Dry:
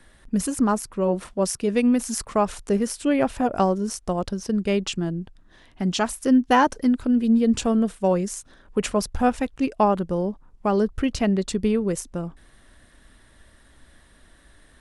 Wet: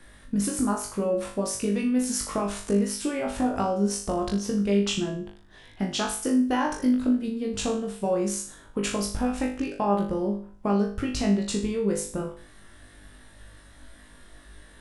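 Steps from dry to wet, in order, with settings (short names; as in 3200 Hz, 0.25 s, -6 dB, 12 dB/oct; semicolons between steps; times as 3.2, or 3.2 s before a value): limiter -14.5 dBFS, peak gain reduction 7 dB; compressor, threshold -25 dBFS, peak gain reduction 8 dB; flutter echo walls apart 3.4 m, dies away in 0.44 s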